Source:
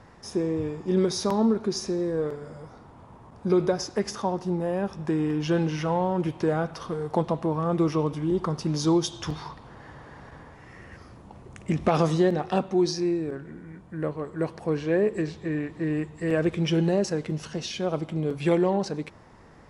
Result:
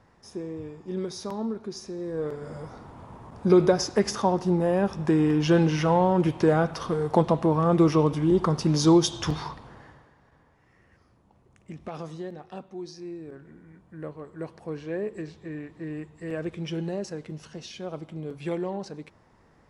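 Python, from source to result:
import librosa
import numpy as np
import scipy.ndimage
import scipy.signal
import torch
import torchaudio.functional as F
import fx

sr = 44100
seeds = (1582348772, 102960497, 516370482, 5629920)

y = fx.gain(x, sr, db=fx.line((1.92, -8.5), (2.55, 4.0), (9.42, 4.0), (9.83, -3.0), (10.16, -15.0), (12.9, -15.0), (13.45, -8.0)))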